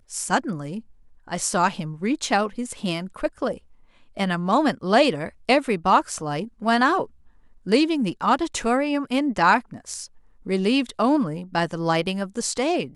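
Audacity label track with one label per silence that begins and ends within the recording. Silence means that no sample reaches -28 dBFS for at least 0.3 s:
0.790000	1.300000	silence
3.540000	4.170000	silence
7.040000	7.670000	silence
10.040000	10.470000	silence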